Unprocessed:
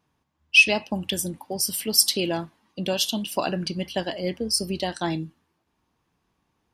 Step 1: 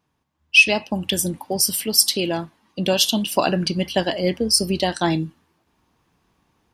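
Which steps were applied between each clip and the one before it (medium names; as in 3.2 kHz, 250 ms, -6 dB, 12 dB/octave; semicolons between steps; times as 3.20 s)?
level rider gain up to 7.5 dB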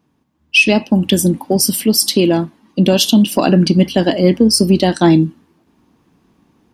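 peaking EQ 250 Hz +12 dB 1.6 oct; in parallel at -11 dB: saturation -8 dBFS, distortion -16 dB; on the sum: loudness maximiser +2.5 dB; trim -1 dB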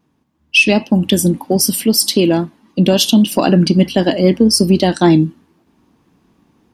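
vibrato 3.8 Hz 34 cents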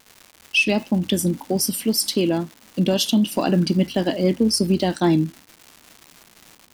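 crackle 390 per s -25 dBFS; trim -7.5 dB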